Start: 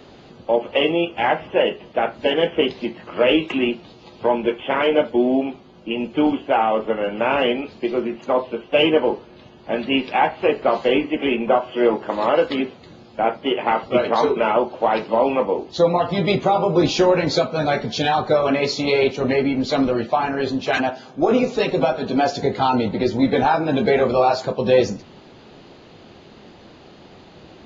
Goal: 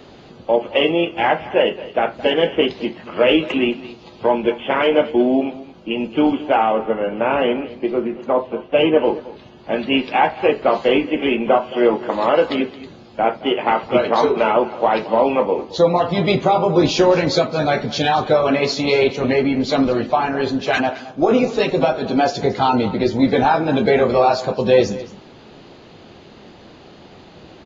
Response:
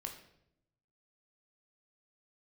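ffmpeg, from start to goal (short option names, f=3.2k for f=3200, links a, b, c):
-filter_complex "[0:a]asettb=1/sr,asplit=3[a][b][c];[a]atrim=end=6.724[d];[b]atrim=start=6.72:end=9.04,asetpts=PTS-STARTPTS,afade=t=in:d=0.004:c=qsin,afade=t=out:st=2.316:d=0.004:c=qsin,lowpass=f=1.8k:p=1[e];[c]atrim=start=9.036[f];[d][e]acrossfade=d=0.004:c1=hsin:c2=qsin[g];[g][f]acrossfade=d=0.004:c1=qsin:c2=hsin,aecho=1:1:220:0.141,volume=2dB"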